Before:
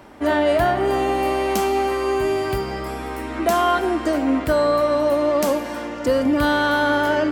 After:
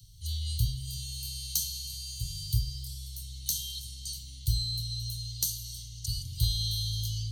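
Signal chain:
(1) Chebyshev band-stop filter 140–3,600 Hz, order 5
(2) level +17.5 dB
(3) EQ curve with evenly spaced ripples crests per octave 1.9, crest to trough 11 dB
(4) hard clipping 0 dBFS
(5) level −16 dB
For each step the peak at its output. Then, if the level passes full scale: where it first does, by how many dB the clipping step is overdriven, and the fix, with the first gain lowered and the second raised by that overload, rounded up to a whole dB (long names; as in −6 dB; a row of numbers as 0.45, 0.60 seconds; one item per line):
−12.5, +5.0, +6.5, 0.0, −16.0 dBFS
step 2, 6.5 dB
step 2 +10.5 dB, step 5 −9 dB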